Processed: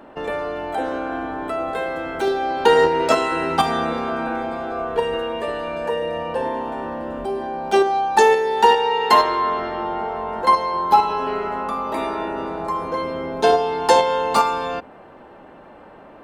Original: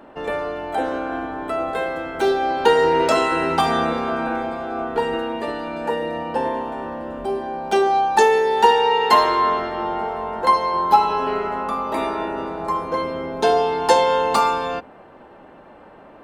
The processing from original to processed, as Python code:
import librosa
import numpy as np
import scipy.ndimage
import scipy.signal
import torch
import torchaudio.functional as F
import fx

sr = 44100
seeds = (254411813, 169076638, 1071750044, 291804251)

p1 = fx.comb(x, sr, ms=1.8, depth=0.54, at=(4.71, 6.42))
p2 = fx.high_shelf(p1, sr, hz=9300.0, db=-11.5, at=(9.22, 10.29))
p3 = fx.level_steps(p2, sr, step_db=16)
p4 = p2 + (p3 * 10.0 ** (1.0 / 20.0))
y = p4 * 10.0 ** (-4.0 / 20.0)